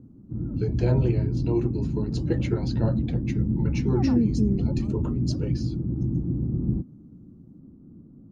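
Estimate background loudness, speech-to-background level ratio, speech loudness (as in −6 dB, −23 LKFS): −26.5 LKFS, −5.0 dB, −31.5 LKFS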